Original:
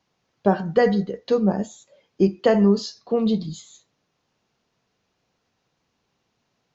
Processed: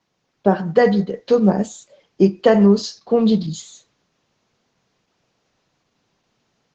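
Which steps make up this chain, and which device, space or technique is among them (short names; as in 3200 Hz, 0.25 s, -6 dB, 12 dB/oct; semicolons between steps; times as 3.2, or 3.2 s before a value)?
video call (HPF 100 Hz 24 dB/oct; AGC gain up to 4 dB; gain +2 dB; Opus 12 kbps 48000 Hz)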